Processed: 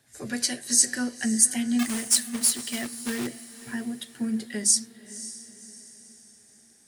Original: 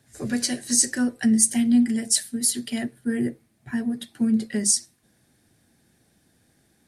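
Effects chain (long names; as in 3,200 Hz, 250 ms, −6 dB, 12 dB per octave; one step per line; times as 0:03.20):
0:01.79–0:03.27: log-companded quantiser 4 bits
low-shelf EQ 440 Hz −9 dB
feedback delay with all-pass diffusion 544 ms, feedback 46%, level −15 dB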